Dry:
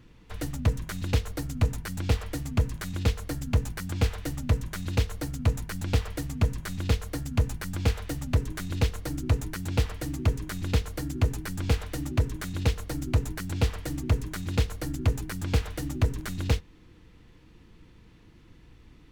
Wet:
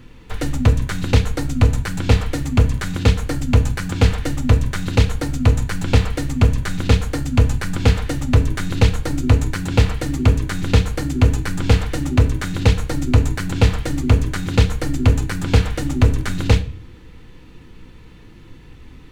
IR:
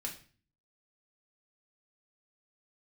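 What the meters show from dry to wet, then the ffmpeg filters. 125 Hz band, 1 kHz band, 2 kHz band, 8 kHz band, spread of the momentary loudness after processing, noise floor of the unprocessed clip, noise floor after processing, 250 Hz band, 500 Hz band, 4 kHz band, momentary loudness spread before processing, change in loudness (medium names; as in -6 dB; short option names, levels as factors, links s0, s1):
+11.0 dB, +11.0 dB, +11.0 dB, +8.0 dB, 5 LU, -54 dBFS, -42 dBFS, +11.5 dB, +11.0 dB, +10.0 dB, 5 LU, +11.0 dB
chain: -filter_complex "[0:a]acrossover=split=8800[s0][s1];[s1]acompressor=threshold=0.00126:ratio=4:attack=1:release=60[s2];[s0][s2]amix=inputs=2:normalize=0,asplit=2[s3][s4];[s4]equalizer=f=5300:w=4.8:g=-9.5[s5];[1:a]atrim=start_sample=2205[s6];[s5][s6]afir=irnorm=-1:irlink=0,volume=0.944[s7];[s3][s7]amix=inputs=2:normalize=0,volume=2.11"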